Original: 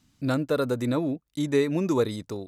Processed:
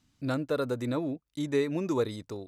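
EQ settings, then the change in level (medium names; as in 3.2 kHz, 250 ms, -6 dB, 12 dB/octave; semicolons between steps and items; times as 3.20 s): peaking EQ 190 Hz -3 dB 0.77 oct; treble shelf 10 kHz -6 dB; -4.0 dB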